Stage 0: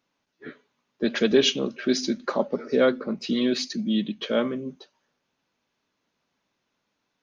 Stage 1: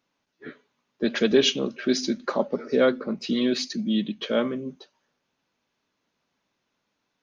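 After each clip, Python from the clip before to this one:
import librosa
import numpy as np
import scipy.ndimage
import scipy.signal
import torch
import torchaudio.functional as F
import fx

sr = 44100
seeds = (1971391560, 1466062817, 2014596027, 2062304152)

y = x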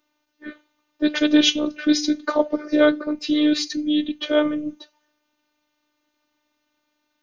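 y = fx.robotise(x, sr, hz=301.0)
y = F.gain(torch.from_numpy(y), 6.5).numpy()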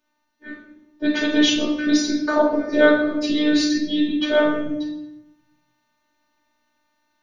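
y = fx.rider(x, sr, range_db=10, speed_s=2.0)
y = fx.room_shoebox(y, sr, seeds[0], volume_m3=230.0, walls='mixed', distance_m=1.5)
y = F.gain(torch.from_numpy(y), -2.0).numpy()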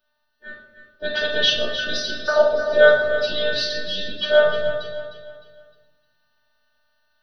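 y = fx.fixed_phaser(x, sr, hz=1500.0, stages=8)
y = fx.echo_feedback(y, sr, ms=306, feedback_pct=37, wet_db=-10)
y = F.gain(torch.from_numpy(y), 3.5).numpy()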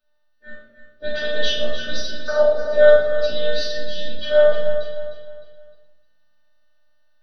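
y = fx.room_shoebox(x, sr, seeds[1], volume_m3=320.0, walls='furnished', distance_m=2.1)
y = F.gain(torch.from_numpy(y), -6.5).numpy()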